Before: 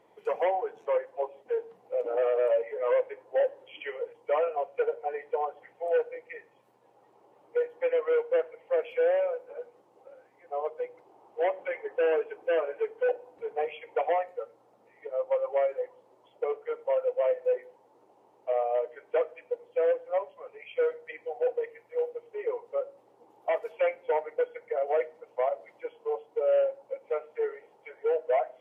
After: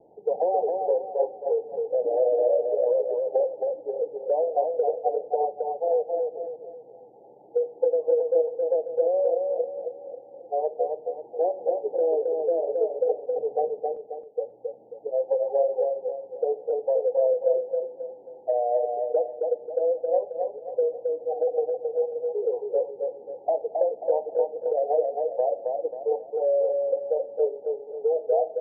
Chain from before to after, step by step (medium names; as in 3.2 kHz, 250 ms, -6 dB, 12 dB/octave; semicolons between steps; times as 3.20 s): steep low-pass 840 Hz 96 dB/octave; compression, threshold -28 dBFS, peak gain reduction 7 dB; 13.90–14.38 s: inverted gate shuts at -39 dBFS, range -37 dB; on a send: feedback delay 269 ms, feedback 39%, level -4 dB; on the sum: trim +7.5 dB